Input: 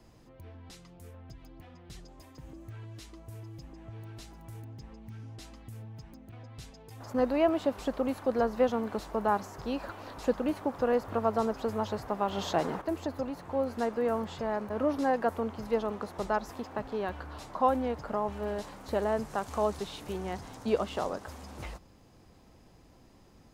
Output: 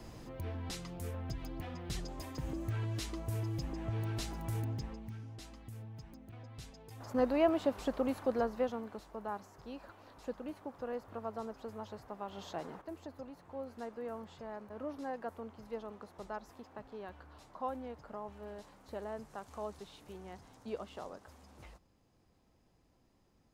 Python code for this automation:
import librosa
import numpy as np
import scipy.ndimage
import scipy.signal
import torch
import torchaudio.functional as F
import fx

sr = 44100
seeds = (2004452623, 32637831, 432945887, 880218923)

y = fx.gain(x, sr, db=fx.line((4.71, 8.0), (5.25, -3.0), (8.23, -3.0), (9.05, -13.0)))